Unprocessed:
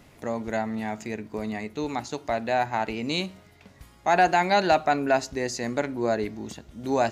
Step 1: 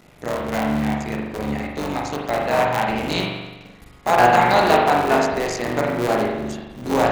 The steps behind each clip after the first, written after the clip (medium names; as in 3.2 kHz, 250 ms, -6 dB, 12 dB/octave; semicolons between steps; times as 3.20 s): cycle switcher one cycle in 3, muted; spring tank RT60 1.1 s, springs 41 ms, chirp 50 ms, DRR -1 dB; trim +4 dB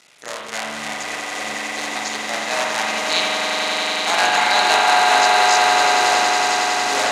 frequency weighting ITU-R 468; on a send: echo with a slow build-up 92 ms, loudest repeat 8, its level -7.5 dB; on the sum: trim -3.5 dB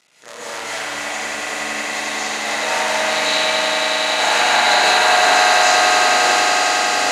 plate-style reverb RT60 1.6 s, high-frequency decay 0.95×, pre-delay 110 ms, DRR -9.5 dB; trim -7 dB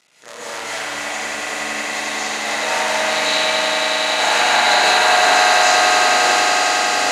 no audible change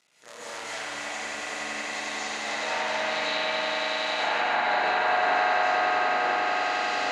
low-pass that closes with the level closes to 2.2 kHz, closed at -11 dBFS; trim -9 dB